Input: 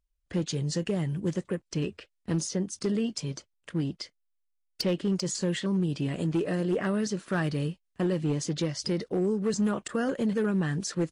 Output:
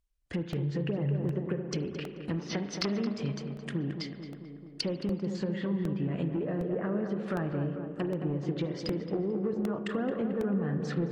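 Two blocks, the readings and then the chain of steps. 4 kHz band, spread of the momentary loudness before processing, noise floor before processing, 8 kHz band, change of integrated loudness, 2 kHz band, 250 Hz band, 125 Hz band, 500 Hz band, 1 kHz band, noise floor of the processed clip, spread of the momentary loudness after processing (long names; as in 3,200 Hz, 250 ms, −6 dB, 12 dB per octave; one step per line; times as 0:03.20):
−4.5 dB, 7 LU, −77 dBFS, −13.0 dB, −3.0 dB, −4.5 dB, −3.0 dB, −2.0 dB, −2.5 dB, −2.5 dB, −46 dBFS, 6 LU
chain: treble cut that deepens with the level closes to 980 Hz, closed at −25 dBFS
gain on a spectral selection 0:02.38–0:03.01, 590–6,300 Hz +12 dB
dynamic equaliser 2,700 Hz, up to +6 dB, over −52 dBFS, Q 0.74
downward compressor, threshold −29 dBFS, peak gain reduction 6.5 dB
tape delay 219 ms, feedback 76%, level −5.5 dB, low-pass 1,400 Hz
spring reverb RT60 1.5 s, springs 35 ms, chirp 40 ms, DRR 9.5 dB
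regular buffer underruns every 0.76 s, samples 64, repeat, from 0:00.53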